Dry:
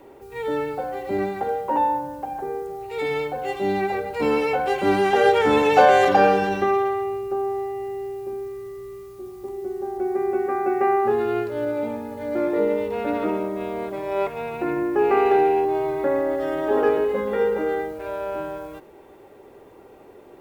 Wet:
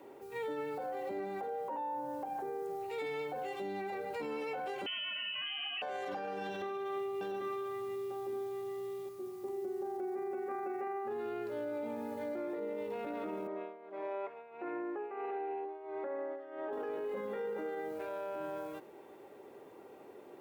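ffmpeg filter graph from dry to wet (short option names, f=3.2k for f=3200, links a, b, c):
-filter_complex "[0:a]asettb=1/sr,asplit=3[a][b][c];[a]atrim=end=0.864[d];[b]atrim=start=0.86:end=2.28,asetpts=PTS-STARTPTS,afade=t=in:d=0.004:c=qsin,afade=t=out:st=1.416:d=0.004:c=qsin,equalizer=f=540:t=o:w=2.2:g=3.5,bandreject=f=50:t=h:w=6,bandreject=f=100:t=h:w=6,bandreject=f=150:t=h:w=6,bandreject=f=200:t=h:w=6,bandreject=f=250:t=h:w=6,bandreject=f=300:t=h:w=6,bandreject=f=350:t=h:w=6,bandreject=f=400:t=h:w=6[e];[c]atrim=start=2.276[f];[d][e]acrossfade=d=0.004:c1=hsin:c2=qsin[g];[g][f]acrossfade=d=0.004:c1=qsin:c2=hsin,asettb=1/sr,asplit=3[h][i][j];[h]atrim=end=4.864[k];[i]atrim=start=4.86:end=5.82,asetpts=PTS-STARTPTS,afade=t=in:d=0.004:c=qsin,afade=t=out:st=0.956:d=0.004:c=qsin,highpass=150,lowpass=f=2.9k:t=q:w=0.5098,lowpass=f=2.9k:t=q:w=0.6013,lowpass=f=2.9k:t=q:w=0.9,lowpass=f=2.9k:t=q:w=2.563,afreqshift=-3400[l];[j]atrim=start=5.816[m];[k][l]acrossfade=d=0.004:c1=hsin:c2=qsin[n];[n][m]acrossfade=d=0.004:c1=qsin:c2=hsin,asettb=1/sr,asplit=3[o][p][q];[o]atrim=end=6.424[r];[p]atrim=start=6.42:end=9.09,asetpts=PTS-STARTPTS,afade=t=in:d=0.004:c=qsin,afade=t=out:st=2.666:d=0.004:c=qsin,equalizer=f=3.5k:w=4.9:g=9,aecho=1:1:73|345|789:0.422|0.106|0.376,atrim=end_sample=117747[s];[q]atrim=start=9.086[t];[r][s]acrossfade=d=0.004:c1=hsin:c2=qsin[u];[u][t]acrossfade=d=0.004:c1=qsin:c2=hsin,asettb=1/sr,asplit=3[v][w][x];[v]atrim=end=13.474[y];[w]atrim=start=13.47:end=16.73,asetpts=PTS-STARTPTS,afade=t=in:d=0.004:c=qsin,afade=t=out:st=3.256:d=0.004:c=qsin,highpass=350,lowpass=2.3k,tremolo=f=1.5:d=0.87[z];[x]atrim=start=16.726[aa];[y][z]acrossfade=d=0.004:c1=hsin:c2=qsin[ab];[ab][aa]acrossfade=d=0.004:c1=qsin:c2=hsin,highpass=160,acompressor=threshold=-28dB:ratio=5,alimiter=level_in=2dB:limit=-24dB:level=0:latency=1:release=13,volume=-2dB,volume=-6dB"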